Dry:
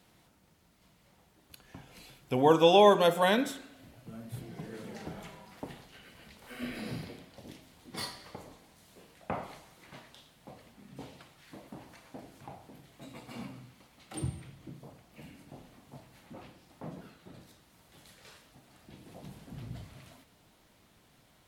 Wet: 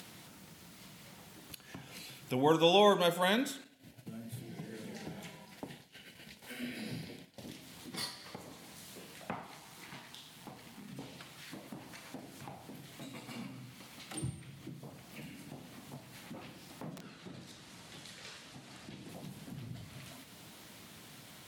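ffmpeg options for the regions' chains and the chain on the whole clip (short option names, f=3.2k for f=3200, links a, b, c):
-filter_complex "[0:a]asettb=1/sr,asplit=3[a][b][c];[a]atrim=end=3.644[d];[b]atrim=start=3.64:end=7.42,asetpts=PTS-STARTPTS,afade=t=in:d=0.004:c=qsin,afade=t=out:st=3.776:d=0.004:c=qsin,agate=range=-33dB:threshold=-48dB:ratio=3:release=100:detection=peak,equalizer=f=1.2k:t=o:w=0.22:g=-13[e];[c]atrim=start=7.416[f];[d][e]acrossfade=d=0.004:c1=hsin:c2=qsin[g];[g][f]acrossfade=d=0.004:c1=qsin:c2=hsin,asettb=1/sr,asplit=3[h][i][j];[h]atrim=end=9.314[k];[i]atrim=start=9.31:end=10.88,asetpts=PTS-STARTPTS,afade=t=in:d=0.004:c=qsin,afade=t=out:st=1.566:d=0.004:c=qsin,aeval=exprs='if(lt(val(0),0),0.447*val(0),val(0))':c=same,equalizer=f=890:w=3.8:g=4,bandreject=f=560:w=5.7[l];[j]atrim=start=10.876[m];[k][l]acrossfade=d=0.004:c1=hsin:c2=qsin[n];[n][m]acrossfade=d=0.004:c1=qsin:c2=hsin,asettb=1/sr,asplit=3[o][p][q];[o]atrim=end=16.944[r];[p]atrim=start=16.94:end=19.09,asetpts=PTS-STARTPTS,afade=t=in:d=0.004:c=qsin,afade=t=out:st=2.146:d=0.004:c=qsin,lowpass=8.4k,aeval=exprs='(mod(79.4*val(0)+1,2)-1)/79.4':c=same[s];[q]atrim=start=19.086[t];[r][s]acrossfade=d=0.004:c1=hsin:c2=qsin[u];[u][t]acrossfade=d=0.004:c1=qsin:c2=hsin,highpass=130,equalizer=f=640:t=o:w=2.6:g=-6,acompressor=mode=upward:threshold=-40dB:ratio=2.5"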